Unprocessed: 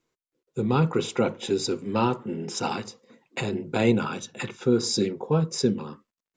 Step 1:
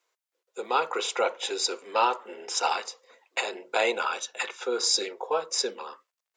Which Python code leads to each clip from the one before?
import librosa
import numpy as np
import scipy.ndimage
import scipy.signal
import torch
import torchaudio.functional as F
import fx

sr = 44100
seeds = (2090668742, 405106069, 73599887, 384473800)

y = scipy.signal.sosfilt(scipy.signal.butter(4, 550.0, 'highpass', fs=sr, output='sos'), x)
y = F.gain(torch.from_numpy(y), 4.0).numpy()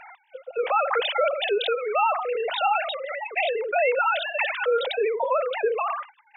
y = fx.sine_speech(x, sr)
y = fx.env_flatten(y, sr, amount_pct=70)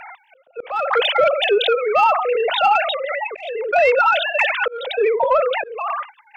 y = fx.cheby_harmonics(x, sr, harmonics=(2, 5, 7), levels_db=(-36, -24, -33), full_scale_db=-11.5)
y = fx.auto_swell(y, sr, attack_ms=402.0)
y = F.gain(torch.from_numpy(y), 6.5).numpy()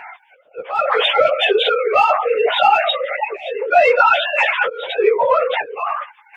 y = fx.phase_scramble(x, sr, seeds[0], window_ms=50)
y = scipy.signal.sosfilt(scipy.signal.butter(2, 51.0, 'highpass', fs=sr, output='sos'), y)
y = F.gain(torch.from_numpy(y), 2.0).numpy()